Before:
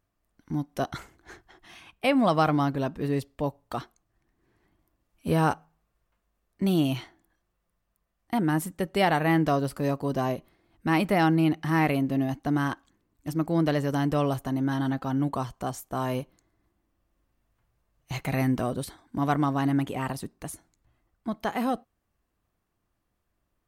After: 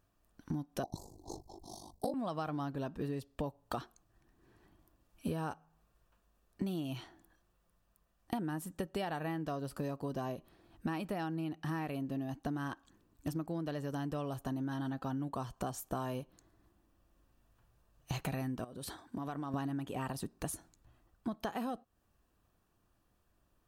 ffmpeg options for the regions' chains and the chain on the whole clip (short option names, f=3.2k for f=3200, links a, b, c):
-filter_complex "[0:a]asettb=1/sr,asplit=3[a][b][c];[a]atrim=end=0.834[d];[b]atrim=start=0.83:end=2.14,asetpts=PTS-STARTPTS,afade=t=in:d=0.004:c=qsin,afade=t=out:st=1.306:d=0.004:c=qsin,acontrast=35,aeval=exprs='val(0)*sin(2*PI*25*n/s)':c=same,asuperstop=centerf=2000:order=12:qfactor=0.61[e];[c]atrim=start=2.136[f];[d][e]acrossfade=d=0.004:c1=hsin:c2=qsin[g];[g][f]acrossfade=d=0.004:c1=qsin:c2=hsin,asettb=1/sr,asplit=3[h][i][j];[h]atrim=end=18.644[k];[i]atrim=start=18.64:end=19.54,asetpts=PTS-STARTPTS,afade=t=in:d=0.004:c=qsin,afade=t=out:st=0.896:d=0.004:c=qsin,highpass=55,bass=f=250:g=-3,treble=f=4k:g=-1,acompressor=threshold=-38dB:ratio=16:attack=3.2:release=140:knee=1:detection=peak[l];[j]atrim=start=19.536[m];[k][l]acrossfade=d=0.004:c1=hsin:c2=qsin[n];[n][m]acrossfade=d=0.004:c1=qsin:c2=hsin,bandreject=f=2.1k:w=6,acompressor=threshold=-37dB:ratio=16,volume=3dB"